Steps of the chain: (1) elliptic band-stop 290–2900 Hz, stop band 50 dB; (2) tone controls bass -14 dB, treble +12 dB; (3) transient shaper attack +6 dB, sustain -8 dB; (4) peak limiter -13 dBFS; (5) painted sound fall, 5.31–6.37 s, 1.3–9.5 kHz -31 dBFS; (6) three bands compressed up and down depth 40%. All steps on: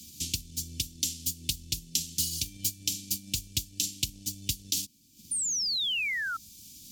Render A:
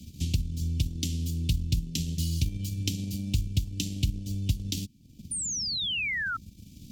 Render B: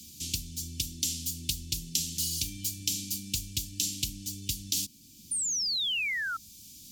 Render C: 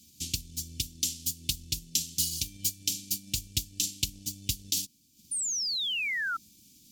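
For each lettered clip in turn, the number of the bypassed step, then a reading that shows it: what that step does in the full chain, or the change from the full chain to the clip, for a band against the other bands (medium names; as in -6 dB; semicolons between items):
2, crest factor change -6.0 dB; 3, 250 Hz band +2.0 dB; 6, crest factor change -2.0 dB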